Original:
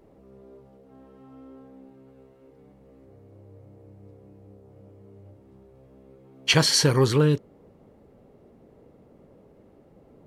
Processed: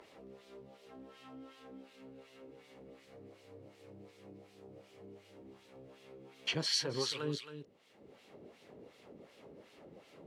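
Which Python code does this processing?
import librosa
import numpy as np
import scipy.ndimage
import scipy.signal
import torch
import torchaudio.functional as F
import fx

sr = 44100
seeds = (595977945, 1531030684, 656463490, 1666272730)

p1 = fx.filter_lfo_bandpass(x, sr, shape='sine', hz=2.7, low_hz=290.0, high_hz=3300.0, q=0.9)
p2 = fx.dynamic_eq(p1, sr, hz=7700.0, q=0.74, threshold_db=-38.0, ratio=4.0, max_db=-5)
p3 = p2 + fx.echo_single(p2, sr, ms=270, db=-12.0, dry=0)
p4 = fx.band_squash(p3, sr, depth_pct=70)
y = F.gain(torch.from_numpy(p4), -1.0).numpy()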